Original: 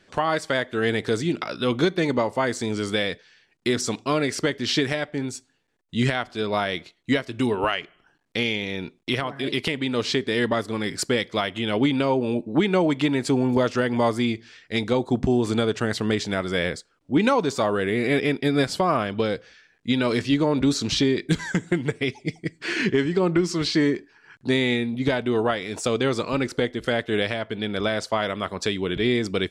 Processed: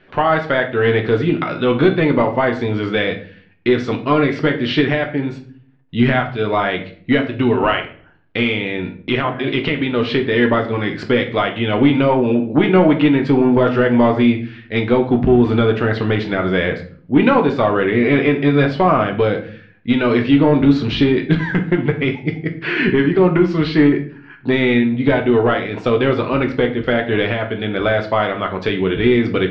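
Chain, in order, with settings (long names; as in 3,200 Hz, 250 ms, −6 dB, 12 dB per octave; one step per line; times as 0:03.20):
in parallel at −3 dB: gain into a clipping stage and back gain 16.5 dB
on the sum: low-pass filter 3,100 Hz 24 dB per octave
rectangular room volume 48 cubic metres, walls mixed, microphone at 0.42 metres
level +1.5 dB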